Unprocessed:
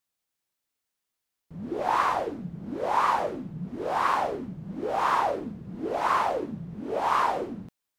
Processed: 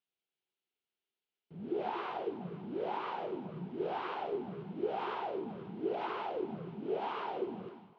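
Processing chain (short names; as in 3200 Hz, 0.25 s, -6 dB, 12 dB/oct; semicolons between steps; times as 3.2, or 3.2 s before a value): compressor, threshold -27 dBFS, peak gain reduction 8.5 dB; speaker cabinet 170–3700 Hz, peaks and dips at 270 Hz -6 dB, 390 Hz +8 dB, 570 Hz -6 dB, 1100 Hz -9 dB, 1800 Hz -7 dB, 3000 Hz +4 dB; on a send: echo with dull and thin repeats by turns 0.242 s, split 940 Hz, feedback 52%, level -11.5 dB; on the sum: gain -4 dB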